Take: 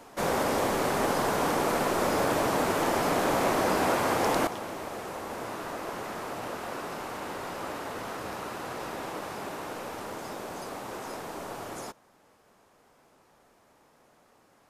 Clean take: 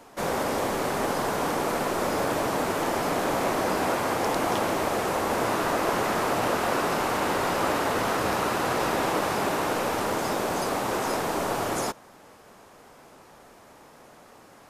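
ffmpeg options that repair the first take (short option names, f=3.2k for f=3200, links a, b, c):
-af "asetnsamples=n=441:p=0,asendcmd='4.47 volume volume 11dB',volume=0dB"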